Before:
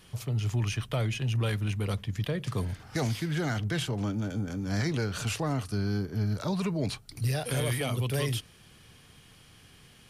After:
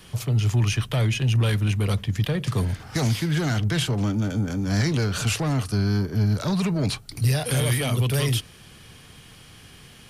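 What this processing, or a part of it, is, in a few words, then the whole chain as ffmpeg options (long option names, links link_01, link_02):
one-band saturation: -filter_complex "[0:a]acrossover=split=210|2700[link_01][link_02][link_03];[link_02]asoftclip=type=tanh:threshold=-33.5dB[link_04];[link_01][link_04][link_03]amix=inputs=3:normalize=0,volume=8dB"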